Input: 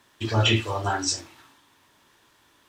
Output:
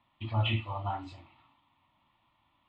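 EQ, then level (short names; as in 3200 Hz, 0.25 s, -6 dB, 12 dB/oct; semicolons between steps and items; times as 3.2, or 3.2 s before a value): air absorption 320 m; fixed phaser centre 1600 Hz, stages 6; -5.0 dB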